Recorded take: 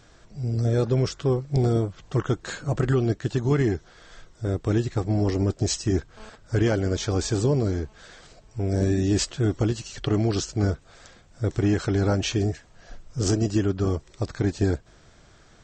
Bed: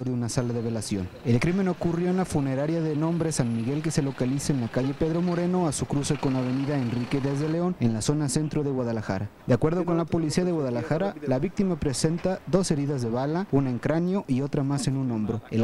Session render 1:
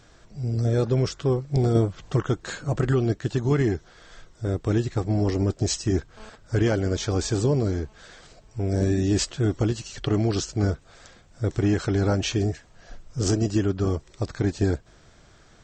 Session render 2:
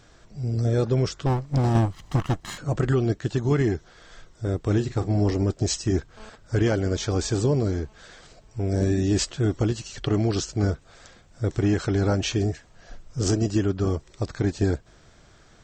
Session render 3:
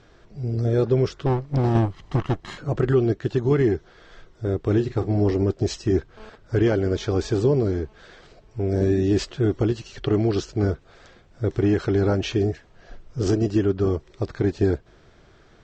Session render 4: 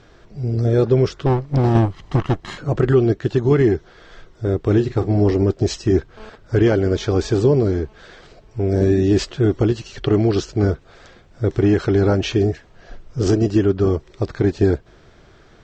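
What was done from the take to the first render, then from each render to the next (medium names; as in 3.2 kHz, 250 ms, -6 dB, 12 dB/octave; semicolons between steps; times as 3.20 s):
1.75–2.16 s: gain +3.5 dB
1.26–2.58 s: comb filter that takes the minimum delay 1 ms; 4.61–5.34 s: doubling 39 ms -12 dB
low-pass 4.2 kHz 12 dB/octave; peaking EQ 390 Hz +6 dB 0.51 oct
trim +4.5 dB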